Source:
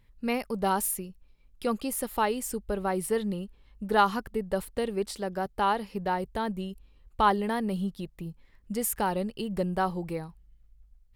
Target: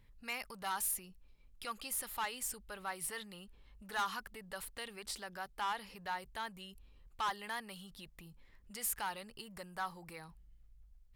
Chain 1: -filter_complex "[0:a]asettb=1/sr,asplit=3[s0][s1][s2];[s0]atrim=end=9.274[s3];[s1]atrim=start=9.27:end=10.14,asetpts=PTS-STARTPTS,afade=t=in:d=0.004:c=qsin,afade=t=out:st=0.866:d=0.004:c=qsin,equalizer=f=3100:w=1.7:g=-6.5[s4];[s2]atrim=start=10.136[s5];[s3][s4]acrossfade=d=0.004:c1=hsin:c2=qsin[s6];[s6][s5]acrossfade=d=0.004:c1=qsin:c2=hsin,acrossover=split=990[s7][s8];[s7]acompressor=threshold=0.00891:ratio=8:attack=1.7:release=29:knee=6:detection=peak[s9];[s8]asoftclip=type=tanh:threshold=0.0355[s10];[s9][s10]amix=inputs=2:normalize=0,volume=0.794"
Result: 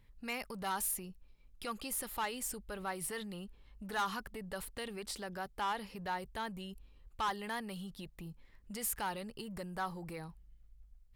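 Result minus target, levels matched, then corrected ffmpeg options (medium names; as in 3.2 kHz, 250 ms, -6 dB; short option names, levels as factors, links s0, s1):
compression: peak gain reduction -9 dB
-filter_complex "[0:a]asettb=1/sr,asplit=3[s0][s1][s2];[s0]atrim=end=9.274[s3];[s1]atrim=start=9.27:end=10.14,asetpts=PTS-STARTPTS,afade=t=in:d=0.004:c=qsin,afade=t=out:st=0.866:d=0.004:c=qsin,equalizer=f=3100:w=1.7:g=-6.5[s4];[s2]atrim=start=10.136[s5];[s3][s4]acrossfade=d=0.004:c1=hsin:c2=qsin[s6];[s6][s5]acrossfade=d=0.004:c1=qsin:c2=hsin,acrossover=split=990[s7][s8];[s7]acompressor=threshold=0.00266:ratio=8:attack=1.7:release=29:knee=6:detection=peak[s9];[s8]asoftclip=type=tanh:threshold=0.0355[s10];[s9][s10]amix=inputs=2:normalize=0,volume=0.794"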